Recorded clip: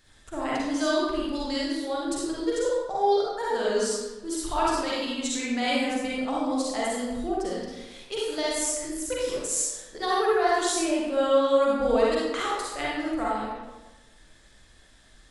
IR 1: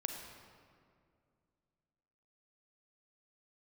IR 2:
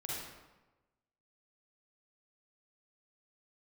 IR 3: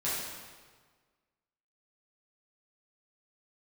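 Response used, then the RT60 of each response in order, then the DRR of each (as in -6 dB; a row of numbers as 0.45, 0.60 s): 2; 2.3, 1.1, 1.5 s; 3.0, -6.0, -10.0 dB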